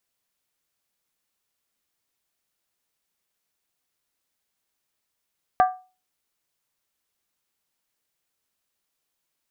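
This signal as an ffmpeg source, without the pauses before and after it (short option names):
-f lavfi -i "aevalsrc='0.282*pow(10,-3*t/0.33)*sin(2*PI*741*t)+0.119*pow(10,-3*t/0.261)*sin(2*PI*1181.2*t)+0.0501*pow(10,-3*t/0.226)*sin(2*PI*1582.8*t)+0.0211*pow(10,-3*t/0.218)*sin(2*PI*1701.3*t)+0.00891*pow(10,-3*t/0.203)*sin(2*PI*1965.9*t)':d=0.63:s=44100"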